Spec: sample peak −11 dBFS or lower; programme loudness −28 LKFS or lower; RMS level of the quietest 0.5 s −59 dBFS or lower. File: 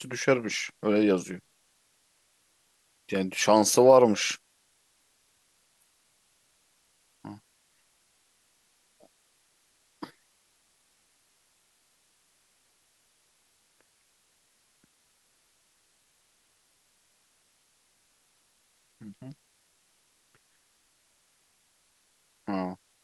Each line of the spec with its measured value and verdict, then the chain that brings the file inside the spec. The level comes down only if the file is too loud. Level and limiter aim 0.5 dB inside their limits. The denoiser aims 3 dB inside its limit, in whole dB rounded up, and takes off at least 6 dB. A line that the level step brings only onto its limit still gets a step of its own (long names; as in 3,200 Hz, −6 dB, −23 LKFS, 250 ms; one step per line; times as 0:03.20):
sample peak −5.5 dBFS: out of spec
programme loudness −24.5 LKFS: out of spec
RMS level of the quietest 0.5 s −69 dBFS: in spec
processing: level −4 dB
brickwall limiter −11.5 dBFS